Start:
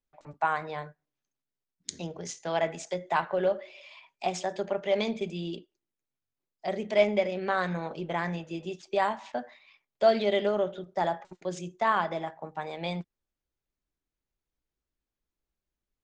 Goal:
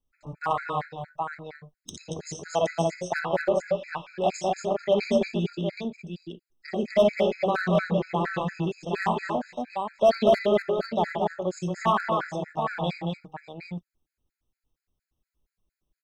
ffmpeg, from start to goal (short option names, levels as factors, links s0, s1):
-af "lowshelf=f=240:g=8.5,aecho=1:1:57|65|87|229|241|769:0.422|0.282|0.211|0.531|0.398|0.501,asoftclip=type=hard:threshold=0.178,afftfilt=real='re*gt(sin(2*PI*4.3*pts/sr)*(1-2*mod(floor(b*sr/1024/1300),2)),0)':imag='im*gt(sin(2*PI*4.3*pts/sr)*(1-2*mod(floor(b*sr/1024/1300),2)),0)':win_size=1024:overlap=0.75,volume=1.33"